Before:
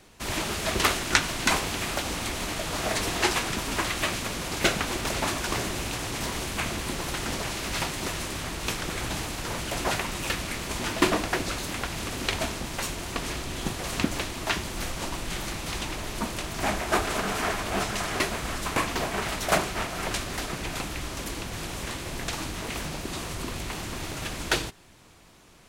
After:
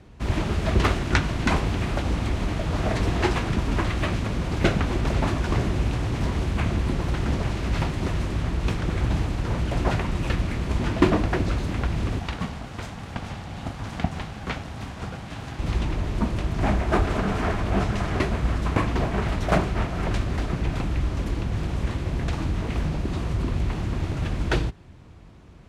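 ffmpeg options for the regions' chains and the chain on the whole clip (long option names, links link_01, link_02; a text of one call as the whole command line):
ffmpeg -i in.wav -filter_complex "[0:a]asettb=1/sr,asplit=3[link_01][link_02][link_03];[link_01]atrim=end=12.194[link_04];[link_02]atrim=start=12.19:end=15.59,asetpts=PTS-STARTPTS,afade=type=in:duration=0.004:curve=qsin,afade=type=out:start_time=3.396:duration=0.004:curve=qsin,highpass=230,aeval=exprs='val(0)*sin(2*PI*460*n/s)':channel_layout=same[link_05];[link_03]atrim=start=15.586[link_06];[link_04][link_05]acrossfade=duration=0.004:curve1=hsin:curve2=qsin[link_07];[link_07][link_06]acrossfade=duration=0.004:curve1=qsin:curve2=hsin,highpass=52,aemphasis=mode=reproduction:type=riaa" out.wav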